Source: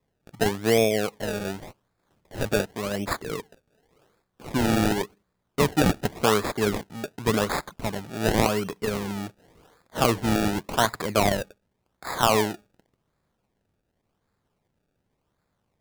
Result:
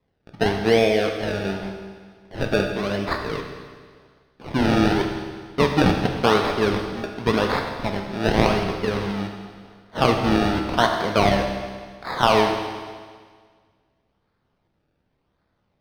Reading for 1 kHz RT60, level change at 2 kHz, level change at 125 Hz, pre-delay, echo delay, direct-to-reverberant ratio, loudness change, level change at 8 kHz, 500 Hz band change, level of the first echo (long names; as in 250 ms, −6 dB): 1.7 s, +4.5 dB, +3.5 dB, 15 ms, no echo audible, 3.0 dB, +3.5 dB, −7.0 dB, +4.0 dB, no echo audible